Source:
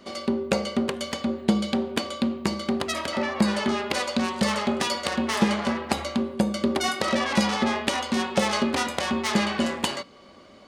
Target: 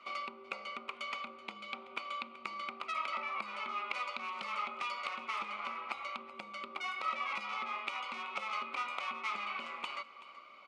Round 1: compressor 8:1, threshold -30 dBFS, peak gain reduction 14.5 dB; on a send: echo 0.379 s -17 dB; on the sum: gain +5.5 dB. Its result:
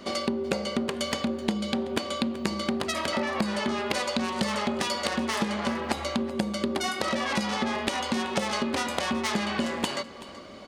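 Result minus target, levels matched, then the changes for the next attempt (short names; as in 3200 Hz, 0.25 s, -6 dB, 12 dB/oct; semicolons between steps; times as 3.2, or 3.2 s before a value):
2000 Hz band -3.5 dB
add after compressor: double band-pass 1700 Hz, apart 0.88 oct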